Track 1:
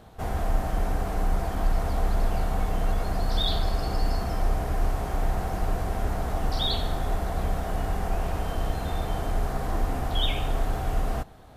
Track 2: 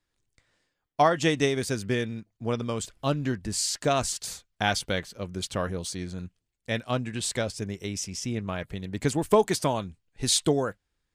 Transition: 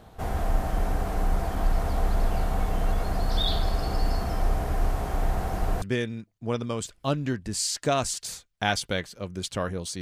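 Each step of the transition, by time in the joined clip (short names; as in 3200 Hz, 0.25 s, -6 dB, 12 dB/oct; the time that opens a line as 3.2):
track 1
5.82 switch to track 2 from 1.81 s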